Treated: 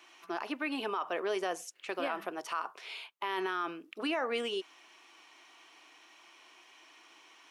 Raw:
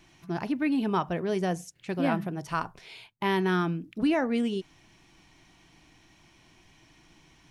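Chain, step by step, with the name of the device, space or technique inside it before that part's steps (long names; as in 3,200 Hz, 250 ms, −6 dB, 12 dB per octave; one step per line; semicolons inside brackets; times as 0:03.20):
laptop speaker (high-pass filter 380 Hz 24 dB per octave; parametric band 1,200 Hz +8 dB 0.56 octaves; parametric band 2,800 Hz +5 dB 0.57 octaves; brickwall limiter −24 dBFS, peak gain reduction 13.5 dB)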